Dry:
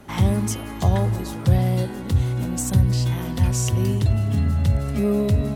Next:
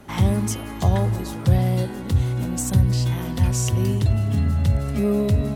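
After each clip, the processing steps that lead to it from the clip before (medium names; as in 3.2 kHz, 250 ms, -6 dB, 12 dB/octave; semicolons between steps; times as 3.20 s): no audible change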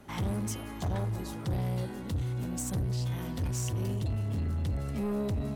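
saturation -19.5 dBFS, distortion -10 dB; trim -7.5 dB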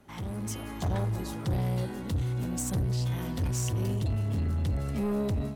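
level rider gain up to 8 dB; trim -5.5 dB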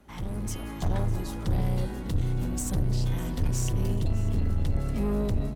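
octave divider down 2 oct, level +1 dB; delay 602 ms -18.5 dB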